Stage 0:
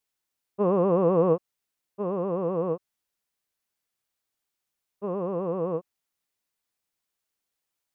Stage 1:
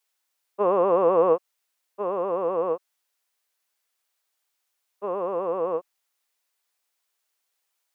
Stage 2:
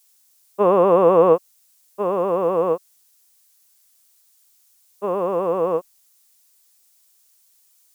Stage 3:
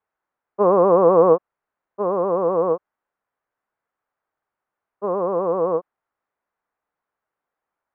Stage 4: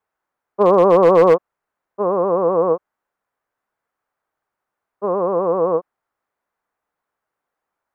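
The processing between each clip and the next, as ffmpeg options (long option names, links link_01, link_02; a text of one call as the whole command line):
ffmpeg -i in.wav -af "highpass=530,volume=6.5dB" out.wav
ffmpeg -i in.wav -af "bass=frequency=250:gain=8,treble=frequency=4000:gain=15,volume=5dB" out.wav
ffmpeg -i in.wav -af "lowpass=frequency=1500:width=0.5412,lowpass=frequency=1500:width=1.3066" out.wav
ffmpeg -i in.wav -af "asoftclip=type=hard:threshold=-9dB,volume=3dB" out.wav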